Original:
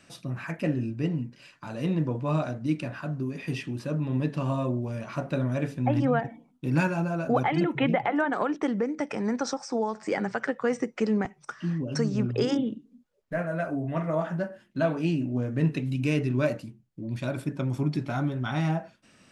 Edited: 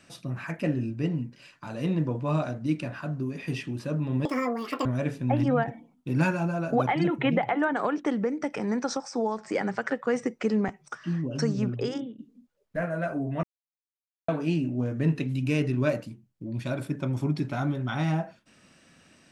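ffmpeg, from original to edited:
ffmpeg -i in.wav -filter_complex "[0:a]asplit=6[link_01][link_02][link_03][link_04][link_05][link_06];[link_01]atrim=end=4.254[link_07];[link_02]atrim=start=4.25:end=5.42,asetpts=PTS-STARTPTS,asetrate=85554,aresample=44100,atrim=end_sample=26596,asetpts=PTS-STARTPTS[link_08];[link_03]atrim=start=5.416:end=12.75,asetpts=PTS-STARTPTS,afade=type=out:start_time=6.714:duration=0.62:silence=0.158489[link_09];[link_04]atrim=start=12.75:end=14,asetpts=PTS-STARTPTS,afade=type=in:duration=0.004:curve=hsin:silence=0.158489,afade=type=out:start_time=1.246:duration=0.004:curve=hsin[link_10];[link_05]atrim=start=14:end=14.85,asetpts=PTS-STARTPTS,volume=0[link_11];[link_06]atrim=start=14.85,asetpts=PTS-STARTPTS,afade=type=in:duration=0.004:curve=hsin[link_12];[link_07][link_08]acrossfade=duration=0.004:curve1=hsin:curve2=hsin[link_13];[link_09][link_10][link_11][link_12]concat=n=4:v=0:a=1[link_14];[link_13][link_14]acrossfade=duration=0.004:curve1=hsin:curve2=hsin" out.wav

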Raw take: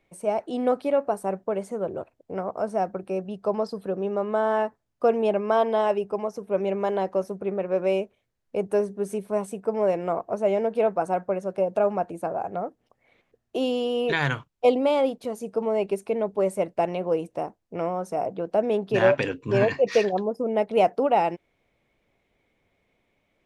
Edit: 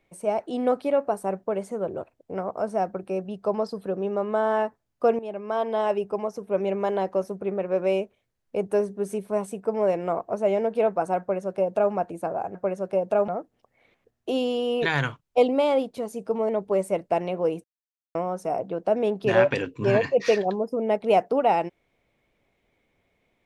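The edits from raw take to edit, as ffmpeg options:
ffmpeg -i in.wav -filter_complex "[0:a]asplit=7[link_01][link_02][link_03][link_04][link_05][link_06][link_07];[link_01]atrim=end=5.19,asetpts=PTS-STARTPTS,afade=type=out:start_time=5.186:duration=0.004:curve=hsin:silence=0.177828[link_08];[link_02]atrim=start=5.19:end=12.552,asetpts=PTS-STARTPTS,afade=type=in:duration=0.82:silence=0.177828[link_09];[link_03]atrim=start=11.198:end=11.932[link_10];[link_04]atrim=start=12.548:end=15.762[link_11];[link_05]atrim=start=16.158:end=17.31,asetpts=PTS-STARTPTS,afade=type=out:start_time=1.148:duration=0.004:curve=hsin[link_12];[link_06]atrim=start=17.31:end=17.82,asetpts=PTS-STARTPTS,volume=0[link_13];[link_07]atrim=start=17.82,asetpts=PTS-STARTPTS,afade=type=in:duration=0.004:curve=hsin[link_14];[link_08][link_09]concat=n=2:v=0:a=1[link_15];[link_15][link_10]acrossfade=duration=0.004:curve1=hsin:curve2=hsin[link_16];[link_16][link_11]acrossfade=duration=0.004:curve1=hsin:curve2=hsin[link_17];[link_12][link_13][link_14]concat=n=3:v=0:a=1[link_18];[link_17][link_18]acrossfade=duration=0.004:curve1=hsin:curve2=hsin" out.wav

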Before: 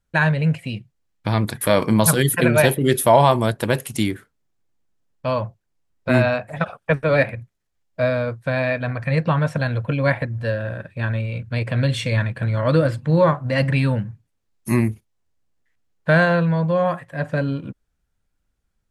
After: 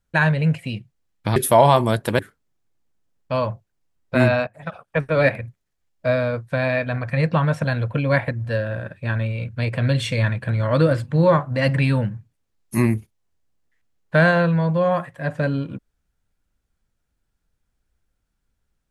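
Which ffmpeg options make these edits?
ffmpeg -i in.wav -filter_complex "[0:a]asplit=4[link_01][link_02][link_03][link_04];[link_01]atrim=end=1.362[link_05];[link_02]atrim=start=2.908:end=3.742[link_06];[link_03]atrim=start=4.128:end=6.41,asetpts=PTS-STARTPTS,afade=type=out:start_time=2.278:duration=0.004:curve=hsin:silence=0.16788[link_07];[link_04]atrim=start=6.41,asetpts=PTS-STARTPTS,afade=type=in:duration=0.76:silence=0.16788[link_08];[link_05][link_06]acrossfade=duration=0.004:curve1=hsin:curve2=hsin[link_09];[link_07][link_08]concat=n=2:v=0:a=1[link_10];[link_09][link_10]acrossfade=duration=0.004:curve1=hsin:curve2=hsin" out.wav

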